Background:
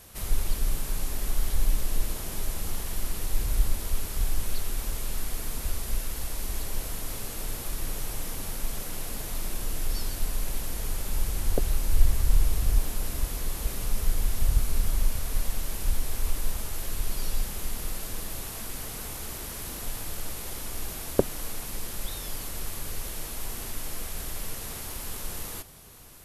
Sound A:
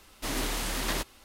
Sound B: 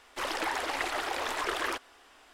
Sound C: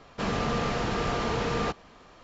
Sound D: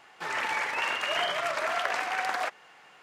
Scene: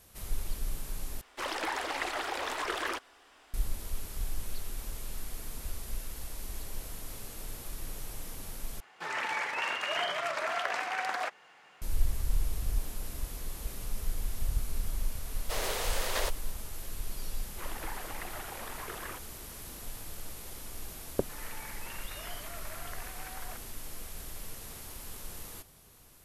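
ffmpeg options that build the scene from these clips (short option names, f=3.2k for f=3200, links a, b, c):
-filter_complex "[2:a]asplit=2[a][b];[4:a]asplit=2[c][d];[0:a]volume=-8dB[e];[1:a]lowshelf=f=360:t=q:w=3:g=-9.5[f];[b]acrossover=split=3400[g][h];[h]acompressor=threshold=-51dB:ratio=4:attack=1:release=60[i];[g][i]amix=inputs=2:normalize=0[j];[e]asplit=3[k][l][m];[k]atrim=end=1.214[n];[a]atrim=end=2.33,asetpts=PTS-STARTPTS,volume=-2dB[o];[l]atrim=start=3.536:end=8.804[p];[c]atrim=end=3.02,asetpts=PTS-STARTPTS,volume=-3.5dB[q];[m]atrim=start=11.816[r];[f]atrim=end=1.24,asetpts=PTS-STARTPTS,volume=-2dB,afade=t=in:d=0.004:c=hsin,afade=t=out:st=1.236:d=0.004:c=hsin,adelay=15270[s];[j]atrim=end=2.33,asetpts=PTS-STARTPTS,volume=-10.5dB,afade=t=in:d=0.004:c=hsin,afade=t=out:st=2.326:d=0.004:c=hsin,adelay=17410[t];[d]atrim=end=3.02,asetpts=PTS-STARTPTS,volume=-17.5dB,afade=t=in:d=0.004:c=hsin,afade=t=out:st=3.016:d=0.004:c=hsin,adelay=21080[u];[n][o]acrossfade=d=0.004:c1=hsin:c2=hsin[v];[v][p]acrossfade=d=0.004:c1=hsin:c2=hsin[w];[w][q]acrossfade=d=0.004:c1=hsin:c2=hsin[x];[x][r]acrossfade=d=0.004:c1=hsin:c2=hsin[y];[y][s][t][u]amix=inputs=4:normalize=0"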